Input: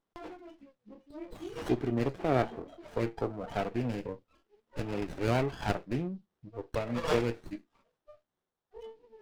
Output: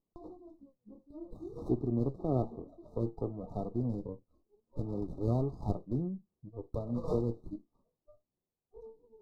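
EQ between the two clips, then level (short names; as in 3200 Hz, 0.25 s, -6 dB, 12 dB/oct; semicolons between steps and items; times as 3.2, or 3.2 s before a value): brick-wall FIR band-stop 1300–3600 Hz; tilt shelf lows +10 dB, about 760 Hz; -8.5 dB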